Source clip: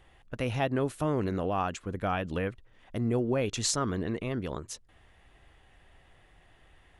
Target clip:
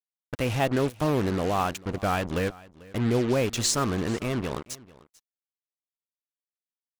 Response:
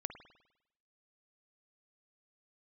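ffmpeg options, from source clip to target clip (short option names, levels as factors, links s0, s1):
-af "acrusher=bits=5:mix=0:aa=0.5,aecho=1:1:443:0.0841,volume=1.58"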